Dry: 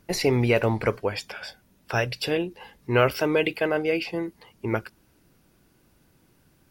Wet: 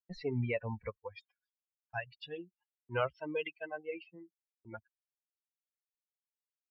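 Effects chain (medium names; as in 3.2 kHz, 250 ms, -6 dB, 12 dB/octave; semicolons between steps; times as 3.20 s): expander on every frequency bin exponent 3; low-pass 3.3 kHz 24 dB/octave; gate -57 dBFS, range -23 dB; peaking EQ 340 Hz -7 dB 0.34 oct; trim -8 dB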